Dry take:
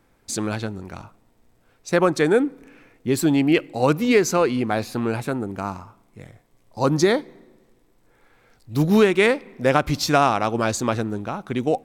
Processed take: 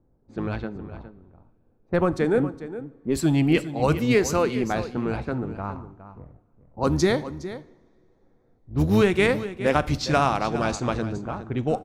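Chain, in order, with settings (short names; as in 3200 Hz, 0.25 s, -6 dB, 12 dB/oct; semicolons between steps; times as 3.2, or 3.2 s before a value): octaver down 1 oct, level -4 dB; low-pass opened by the level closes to 570 Hz, open at -15.5 dBFS; 0.87–3.15 high shelf 2100 Hz -9.5 dB; echo 0.413 s -13 dB; two-slope reverb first 0.52 s, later 3.2 s, from -20 dB, DRR 15 dB; mismatched tape noise reduction decoder only; gain -3.5 dB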